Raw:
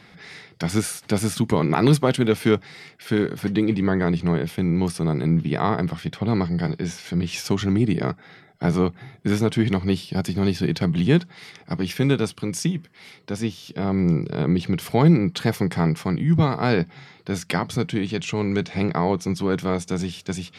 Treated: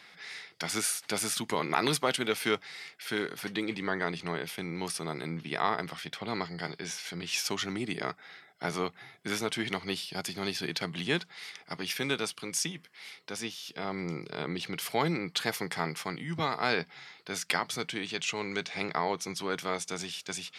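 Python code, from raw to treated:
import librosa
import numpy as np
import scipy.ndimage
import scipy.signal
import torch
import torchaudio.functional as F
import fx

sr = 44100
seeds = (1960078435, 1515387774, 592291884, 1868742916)

y = fx.highpass(x, sr, hz=1400.0, slope=6)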